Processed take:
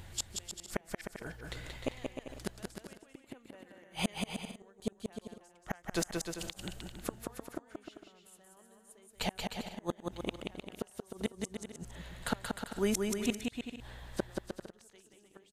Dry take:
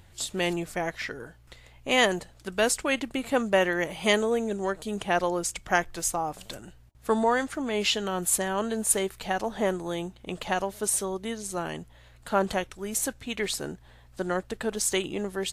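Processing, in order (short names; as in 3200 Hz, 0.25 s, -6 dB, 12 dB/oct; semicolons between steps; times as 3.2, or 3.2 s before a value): flipped gate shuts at -23 dBFS, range -39 dB; bouncing-ball echo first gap 0.18 s, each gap 0.7×, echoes 5; gain +4.5 dB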